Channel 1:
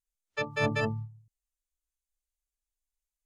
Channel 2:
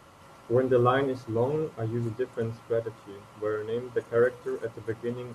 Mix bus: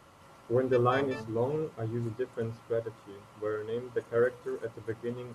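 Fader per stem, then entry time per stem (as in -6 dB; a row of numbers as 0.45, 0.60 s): -11.5, -3.5 dB; 0.35, 0.00 s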